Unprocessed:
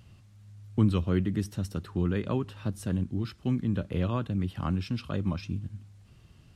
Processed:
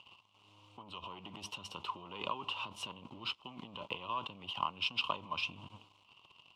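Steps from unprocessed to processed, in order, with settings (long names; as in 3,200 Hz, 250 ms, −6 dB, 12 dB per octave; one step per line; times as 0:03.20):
leveller curve on the samples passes 2
compressor whose output falls as the input rises −28 dBFS, ratio −1
pair of resonant band-passes 1,700 Hz, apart 1.5 octaves
level +6 dB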